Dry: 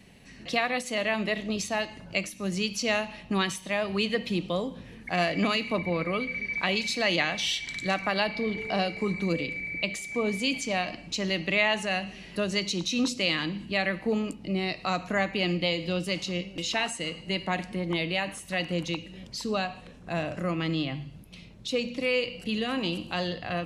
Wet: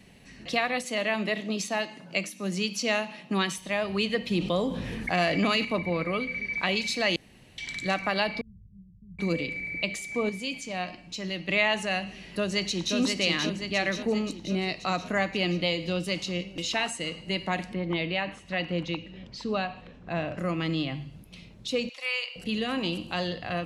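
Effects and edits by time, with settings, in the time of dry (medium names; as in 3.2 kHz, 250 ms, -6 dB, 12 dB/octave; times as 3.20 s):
0.84–3.58 s: steep high-pass 150 Hz
4.31–5.65 s: level flattener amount 50%
7.16–7.58 s: room tone
8.41–9.19 s: inverse Chebyshev low-pass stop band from 690 Hz, stop band 80 dB
10.29–11.49 s: feedback comb 180 Hz, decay 0.18 s
12.04–12.96 s: echo throw 530 ms, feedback 60%, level -3.5 dB
17.73–20.38 s: low-pass 3.8 kHz
21.89–22.36 s: high-pass 780 Hz 24 dB/octave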